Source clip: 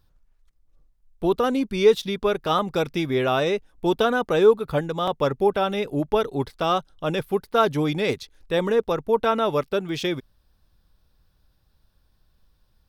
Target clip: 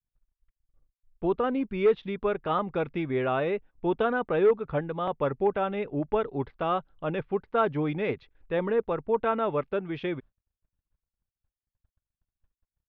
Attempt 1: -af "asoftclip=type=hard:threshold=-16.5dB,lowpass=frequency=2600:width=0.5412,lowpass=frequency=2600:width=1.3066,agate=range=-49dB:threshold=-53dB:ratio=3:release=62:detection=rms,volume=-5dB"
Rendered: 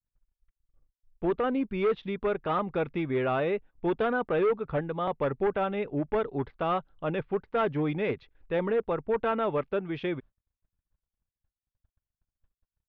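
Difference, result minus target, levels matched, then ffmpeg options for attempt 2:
hard clipping: distortion +11 dB
-af "asoftclip=type=hard:threshold=-10.5dB,lowpass=frequency=2600:width=0.5412,lowpass=frequency=2600:width=1.3066,agate=range=-49dB:threshold=-53dB:ratio=3:release=62:detection=rms,volume=-5dB"

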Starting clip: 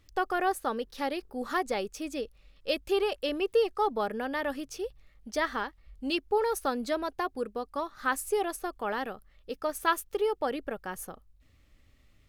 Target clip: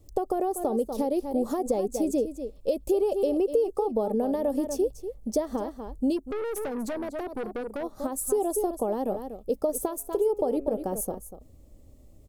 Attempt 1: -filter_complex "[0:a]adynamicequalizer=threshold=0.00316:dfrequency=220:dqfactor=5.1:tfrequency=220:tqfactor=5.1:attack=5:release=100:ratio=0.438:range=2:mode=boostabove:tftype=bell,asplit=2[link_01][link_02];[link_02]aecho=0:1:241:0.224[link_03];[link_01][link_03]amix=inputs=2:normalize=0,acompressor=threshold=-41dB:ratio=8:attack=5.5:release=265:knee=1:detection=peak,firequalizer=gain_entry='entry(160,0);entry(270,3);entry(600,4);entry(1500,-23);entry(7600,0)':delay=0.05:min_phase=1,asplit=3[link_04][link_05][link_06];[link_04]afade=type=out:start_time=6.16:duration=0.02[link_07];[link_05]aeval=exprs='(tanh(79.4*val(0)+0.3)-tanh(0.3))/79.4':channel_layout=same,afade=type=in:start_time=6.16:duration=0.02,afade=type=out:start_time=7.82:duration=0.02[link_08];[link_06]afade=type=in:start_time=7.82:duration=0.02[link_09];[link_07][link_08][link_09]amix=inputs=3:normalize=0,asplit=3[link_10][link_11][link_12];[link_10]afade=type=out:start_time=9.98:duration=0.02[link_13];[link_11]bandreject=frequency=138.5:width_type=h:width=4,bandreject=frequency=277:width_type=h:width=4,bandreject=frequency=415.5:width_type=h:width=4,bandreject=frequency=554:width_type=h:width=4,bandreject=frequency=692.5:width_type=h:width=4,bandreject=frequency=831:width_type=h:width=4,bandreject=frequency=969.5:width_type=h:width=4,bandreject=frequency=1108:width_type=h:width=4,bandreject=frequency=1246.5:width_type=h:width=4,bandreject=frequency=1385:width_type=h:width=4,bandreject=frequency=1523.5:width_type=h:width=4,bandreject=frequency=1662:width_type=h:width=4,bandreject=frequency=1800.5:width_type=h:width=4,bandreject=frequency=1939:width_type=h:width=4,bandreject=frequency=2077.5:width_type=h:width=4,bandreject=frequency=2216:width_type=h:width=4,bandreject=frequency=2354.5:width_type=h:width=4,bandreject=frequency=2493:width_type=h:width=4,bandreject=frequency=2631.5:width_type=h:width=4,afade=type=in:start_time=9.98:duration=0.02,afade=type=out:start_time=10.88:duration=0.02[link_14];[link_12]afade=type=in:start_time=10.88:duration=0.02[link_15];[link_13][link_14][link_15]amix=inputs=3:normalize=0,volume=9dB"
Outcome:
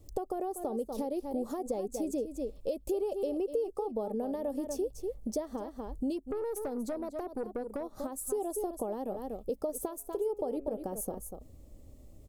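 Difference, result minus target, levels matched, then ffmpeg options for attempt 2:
downward compressor: peak gain reduction +8 dB
-filter_complex "[0:a]adynamicequalizer=threshold=0.00316:dfrequency=220:dqfactor=5.1:tfrequency=220:tqfactor=5.1:attack=5:release=100:ratio=0.438:range=2:mode=boostabove:tftype=bell,asplit=2[link_01][link_02];[link_02]aecho=0:1:241:0.224[link_03];[link_01][link_03]amix=inputs=2:normalize=0,acompressor=threshold=-32dB:ratio=8:attack=5.5:release=265:knee=1:detection=peak,firequalizer=gain_entry='entry(160,0);entry(270,3);entry(600,4);entry(1500,-23);entry(7600,0)':delay=0.05:min_phase=1,asplit=3[link_04][link_05][link_06];[link_04]afade=type=out:start_time=6.16:duration=0.02[link_07];[link_05]aeval=exprs='(tanh(79.4*val(0)+0.3)-tanh(0.3))/79.4':channel_layout=same,afade=type=in:start_time=6.16:duration=0.02,afade=type=out:start_time=7.82:duration=0.02[link_08];[link_06]afade=type=in:start_time=7.82:duration=0.02[link_09];[link_07][link_08][link_09]amix=inputs=3:normalize=0,asplit=3[link_10][link_11][link_12];[link_10]afade=type=out:start_time=9.98:duration=0.02[link_13];[link_11]bandreject=frequency=138.5:width_type=h:width=4,bandreject=frequency=277:width_type=h:width=4,bandreject=frequency=415.5:width_type=h:width=4,bandreject=frequency=554:width_type=h:width=4,bandreject=frequency=692.5:width_type=h:width=4,bandreject=frequency=831:width_type=h:width=4,bandreject=frequency=969.5:width_type=h:width=4,bandreject=frequency=1108:width_type=h:width=4,bandreject=frequency=1246.5:width_type=h:width=4,bandreject=frequency=1385:width_type=h:width=4,bandreject=frequency=1523.5:width_type=h:width=4,bandreject=frequency=1662:width_type=h:width=4,bandreject=frequency=1800.5:width_type=h:width=4,bandreject=frequency=1939:width_type=h:width=4,bandreject=frequency=2077.5:width_type=h:width=4,bandreject=frequency=2216:width_type=h:width=4,bandreject=frequency=2354.5:width_type=h:width=4,bandreject=frequency=2493:width_type=h:width=4,bandreject=frequency=2631.5:width_type=h:width=4,afade=type=in:start_time=9.98:duration=0.02,afade=type=out:start_time=10.88:duration=0.02[link_14];[link_12]afade=type=in:start_time=10.88:duration=0.02[link_15];[link_13][link_14][link_15]amix=inputs=3:normalize=0,volume=9dB"

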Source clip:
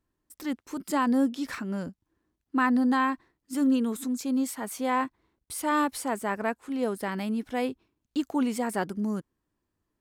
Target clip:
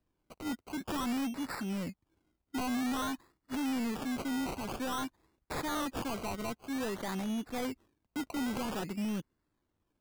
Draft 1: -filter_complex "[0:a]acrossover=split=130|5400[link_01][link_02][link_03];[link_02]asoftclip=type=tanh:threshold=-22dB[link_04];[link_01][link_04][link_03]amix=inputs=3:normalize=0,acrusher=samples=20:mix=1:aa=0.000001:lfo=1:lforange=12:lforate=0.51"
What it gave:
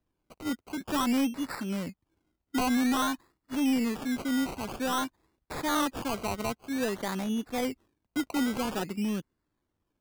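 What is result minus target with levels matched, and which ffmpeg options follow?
soft clipping: distortion −8 dB
-filter_complex "[0:a]acrossover=split=130|5400[link_01][link_02][link_03];[link_02]asoftclip=type=tanh:threshold=-33dB[link_04];[link_01][link_04][link_03]amix=inputs=3:normalize=0,acrusher=samples=20:mix=1:aa=0.000001:lfo=1:lforange=12:lforate=0.51"

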